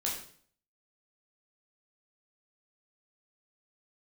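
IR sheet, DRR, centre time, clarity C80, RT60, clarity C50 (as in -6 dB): -4.0 dB, 37 ms, 8.0 dB, 0.50 s, 5.0 dB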